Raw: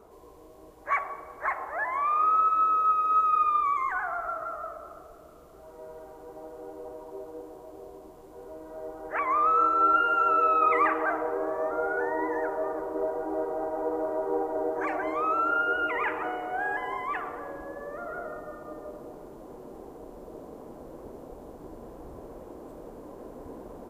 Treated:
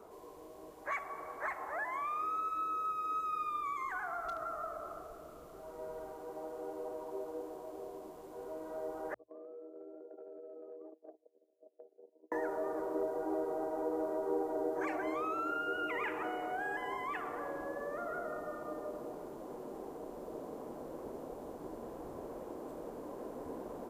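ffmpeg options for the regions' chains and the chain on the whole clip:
ffmpeg -i in.wav -filter_complex "[0:a]asettb=1/sr,asplit=3[link_01][link_02][link_03];[link_01]atrim=end=4.254[link_04];[link_02]atrim=start=4.25:end=6.12,asetpts=PTS-STARTPTS,afade=type=in:duration=0.004:curve=qsin,afade=type=out:start_time=1.866:duration=0.004:curve=qsin,lowshelf=frequency=110:gain=8.5,asoftclip=type=hard:threshold=-26dB[link_05];[link_03]atrim=start=6.116[link_06];[link_04][link_05]acrossfade=duration=0.004:curve1=hsin:curve2=qsin[link_07];[link_07][link_06]acrossfade=duration=0.004:curve1=qsin:curve2=hsin,asettb=1/sr,asplit=3[link_08][link_09][link_10];[link_08]atrim=end=9.144[link_11];[link_09]atrim=start=9.14:end=12.32,asetpts=PTS-STARTPTS,afade=type=in:duration=0.004:curve=qsin,afade=type=out:start_time=3.176:duration=0.004:curve=qsin,agate=range=-45dB:threshold=-25dB:ratio=16:release=100:detection=peak,asuperpass=centerf=380:order=8:qfactor=1,acompressor=threshold=-46dB:ratio=10:attack=3.2:release=140:knee=1:detection=peak[link_12];[link_10]atrim=start=12.316[link_13];[link_11][link_12]acrossfade=duration=0.004:curve1=hsin:curve2=qsin[link_14];[link_14][link_13]acrossfade=duration=0.004:curve1=qsin:curve2=hsin,lowshelf=frequency=110:gain=-10.5,bandreject=frequency=60:width_type=h:width=6,bandreject=frequency=120:width_type=h:width=6,acrossover=split=380|3000[link_15][link_16][link_17];[link_16]acompressor=threshold=-38dB:ratio=6[link_18];[link_15][link_18][link_17]amix=inputs=3:normalize=0" out.wav

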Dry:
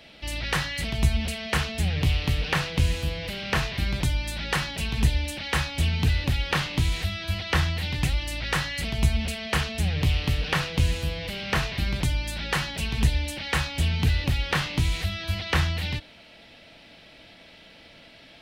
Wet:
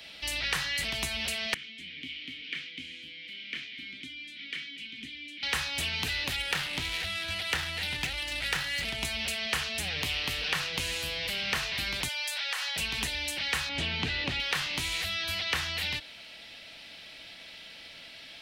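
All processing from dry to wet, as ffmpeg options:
ffmpeg -i in.wav -filter_complex "[0:a]asettb=1/sr,asplit=3[link_01][link_02][link_03];[link_01]atrim=end=1.544[link_04];[link_02]atrim=start=1.54:end=5.43,asetpts=PTS-STARTPTS,afade=type=in:duration=0.004:curve=qsin,afade=type=out:start_time=3.886:duration=0.004:curve=qsin,asplit=3[link_05][link_06][link_07];[link_05]bandpass=frequency=270:width_type=q:width=8,volume=0dB[link_08];[link_06]bandpass=frequency=2290:width_type=q:width=8,volume=-6dB[link_09];[link_07]bandpass=frequency=3010:width_type=q:width=8,volume=-9dB[link_10];[link_08][link_09][link_10]amix=inputs=3:normalize=0,lowshelf=frequency=110:gain=-11[link_11];[link_03]atrim=start=5.426[link_12];[link_04][link_11]acrossfade=duration=0.004:curve1=hsin:curve2=qsin[link_13];[link_13][link_12]acrossfade=duration=0.004:curve1=qsin:curve2=hsin,asettb=1/sr,asplit=3[link_14][link_15][link_16];[link_14]atrim=end=6.364[link_17];[link_15]atrim=start=6.36:end=9.05,asetpts=PTS-STARTPTS,afade=type=in:duration=0.004:curve=qsin,afade=type=out:start_time=2.686:duration=0.004:curve=qsin,bandreject=frequency=1100:width=8.6,adynamicsmooth=sensitivity=6:basefreq=2100[link_18];[link_16]atrim=start=9.046[link_19];[link_17][link_18]acrossfade=duration=0.004:curve1=hsin:curve2=qsin[link_20];[link_20][link_19]acrossfade=duration=0.004:curve1=qsin:curve2=hsin,asettb=1/sr,asplit=3[link_21][link_22][link_23];[link_21]atrim=end=12.084[link_24];[link_22]atrim=start=12.08:end=12.76,asetpts=PTS-STARTPTS,afade=type=in:duration=0.004:curve=qsin,afade=type=out:start_time=0.676:duration=0.004:curve=qsin,highpass=frequency=580:width=0.5412,highpass=frequency=580:width=1.3066,acompressor=threshold=-31dB:ratio=5:attack=3.2:release=140:knee=1:detection=peak[link_25];[link_23]atrim=start=12.756[link_26];[link_24][link_25]acrossfade=duration=0.004:curve1=hsin:curve2=qsin[link_27];[link_27][link_26]acrossfade=duration=0.004:curve1=qsin:curve2=hsin,asettb=1/sr,asplit=3[link_28][link_29][link_30];[link_28]atrim=end=13.694[link_31];[link_29]atrim=start=13.69:end=14.4,asetpts=PTS-STARTPTS,afade=type=in:duration=0.004:curve=qsin,afade=type=out:start_time=0.706:duration=0.004:curve=qsin,lowpass=4000,equalizer=frequency=130:width=0.3:gain=10.5[link_32];[link_30]atrim=start=14.396[link_33];[link_31][link_32]acrossfade=duration=0.004:curve1=hsin:curve2=qsin[link_34];[link_34][link_33]acrossfade=duration=0.004:curve1=qsin:curve2=hsin,tiltshelf=frequency=1300:gain=-7,acrossover=split=260|2600[link_35][link_36][link_37];[link_35]acompressor=threshold=-43dB:ratio=4[link_38];[link_36]acompressor=threshold=-31dB:ratio=4[link_39];[link_37]acompressor=threshold=-34dB:ratio=4[link_40];[link_38][link_39][link_40]amix=inputs=3:normalize=0" out.wav

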